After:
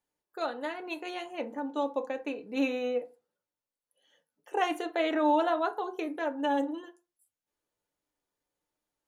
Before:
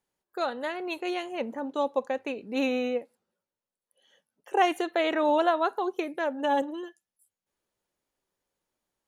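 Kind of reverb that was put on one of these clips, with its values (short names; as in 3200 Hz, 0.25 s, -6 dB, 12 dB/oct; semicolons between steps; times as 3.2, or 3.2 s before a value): FDN reverb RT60 0.31 s, low-frequency decay 0.9×, high-frequency decay 0.5×, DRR 5.5 dB; gain -4.5 dB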